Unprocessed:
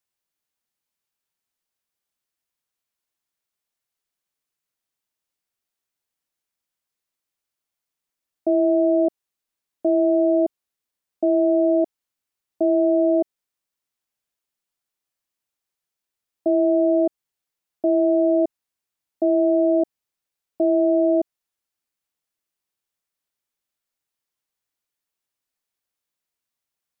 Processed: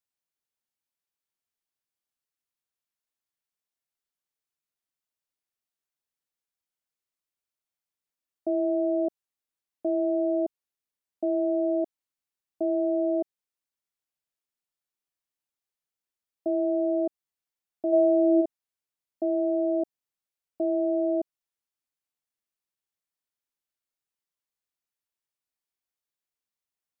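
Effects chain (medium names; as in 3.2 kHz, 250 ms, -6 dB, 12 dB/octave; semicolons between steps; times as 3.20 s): 17.92–18.40 s: peaking EQ 630 Hz -> 360 Hz +9.5 dB 0.87 oct; trim -7.5 dB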